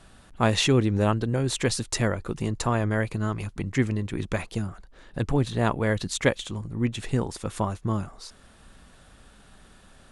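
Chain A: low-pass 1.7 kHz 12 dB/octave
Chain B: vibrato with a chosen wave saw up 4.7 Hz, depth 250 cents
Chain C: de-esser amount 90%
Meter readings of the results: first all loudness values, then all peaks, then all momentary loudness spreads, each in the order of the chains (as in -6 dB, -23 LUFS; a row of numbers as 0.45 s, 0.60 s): -27.5 LUFS, -26.5 LUFS, -27.5 LUFS; -7.5 dBFS, -7.0 dBFS, -7.5 dBFS; 10 LU, 11 LU, 9 LU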